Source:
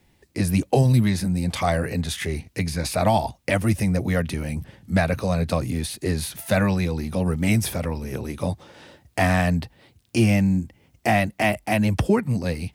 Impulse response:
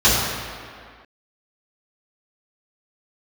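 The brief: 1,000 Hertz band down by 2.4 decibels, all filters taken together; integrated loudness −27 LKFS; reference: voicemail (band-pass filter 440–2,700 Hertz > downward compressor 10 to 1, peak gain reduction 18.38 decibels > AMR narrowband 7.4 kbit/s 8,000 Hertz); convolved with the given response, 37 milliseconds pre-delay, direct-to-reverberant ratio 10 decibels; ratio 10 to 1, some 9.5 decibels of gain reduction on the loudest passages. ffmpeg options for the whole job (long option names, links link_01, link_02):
-filter_complex "[0:a]equalizer=frequency=1000:width_type=o:gain=-3,acompressor=threshold=-24dB:ratio=10,asplit=2[link_01][link_02];[1:a]atrim=start_sample=2205,adelay=37[link_03];[link_02][link_03]afir=irnorm=-1:irlink=0,volume=-33.5dB[link_04];[link_01][link_04]amix=inputs=2:normalize=0,highpass=440,lowpass=2700,acompressor=threshold=-43dB:ratio=10,volume=22.5dB" -ar 8000 -c:a libopencore_amrnb -b:a 7400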